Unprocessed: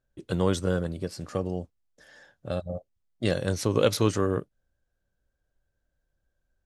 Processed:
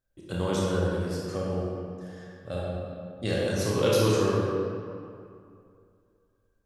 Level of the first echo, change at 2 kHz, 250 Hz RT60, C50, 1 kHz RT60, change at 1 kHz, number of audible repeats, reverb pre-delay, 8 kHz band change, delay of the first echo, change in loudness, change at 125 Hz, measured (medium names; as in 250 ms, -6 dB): no echo, +1.0 dB, 2.5 s, -2.5 dB, 2.5 s, +1.5 dB, no echo, 23 ms, +0.5 dB, no echo, 0.0 dB, +0.5 dB